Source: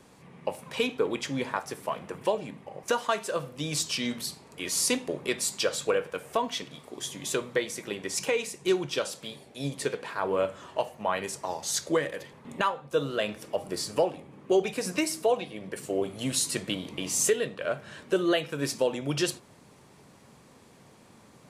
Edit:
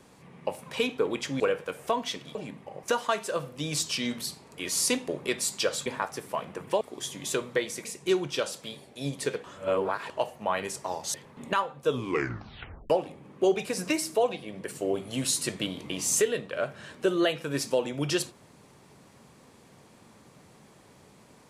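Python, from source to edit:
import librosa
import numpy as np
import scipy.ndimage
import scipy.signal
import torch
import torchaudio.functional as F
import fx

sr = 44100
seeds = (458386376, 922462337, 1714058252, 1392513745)

y = fx.edit(x, sr, fx.swap(start_s=1.4, length_s=0.95, other_s=5.86, other_length_s=0.95),
    fx.cut(start_s=7.85, length_s=0.59),
    fx.reverse_span(start_s=10.03, length_s=0.66),
    fx.cut(start_s=11.73, length_s=0.49),
    fx.tape_stop(start_s=12.94, length_s=1.04), tone=tone)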